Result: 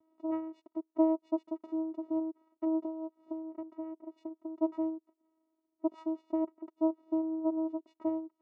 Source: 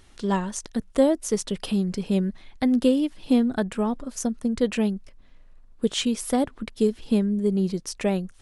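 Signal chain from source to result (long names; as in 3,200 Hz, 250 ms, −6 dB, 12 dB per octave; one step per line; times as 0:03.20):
0:02.84–0:04.60: downward compressor 5 to 1, threshold −28 dBFS, peak gain reduction 12.5 dB
channel vocoder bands 4, saw 320 Hz
Savitzky-Golay smoothing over 65 samples
level −8.5 dB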